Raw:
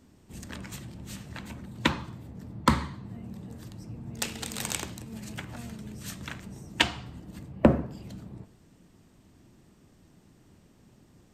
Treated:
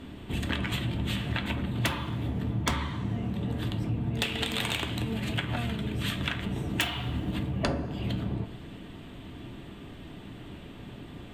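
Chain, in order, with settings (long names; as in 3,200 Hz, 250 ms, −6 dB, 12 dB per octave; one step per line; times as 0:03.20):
high shelf with overshoot 4,300 Hz −9 dB, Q 3
in parallel at −9.5 dB: sine wavefolder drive 18 dB, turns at −0.5 dBFS
on the sum: downward compressor 10 to 1, threshold −27 dBFS, peak gain reduction 17.5 dB
coupled-rooms reverb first 0.21 s, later 2.8 s, from −21 dB, DRR 7 dB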